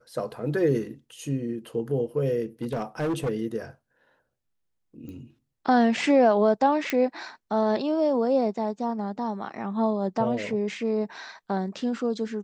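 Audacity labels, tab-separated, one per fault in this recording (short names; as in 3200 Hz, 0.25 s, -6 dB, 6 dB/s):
2.620000	3.300000	clipped -23.5 dBFS
5.090000	5.090000	pop -30 dBFS
6.900000	6.900000	pop -12 dBFS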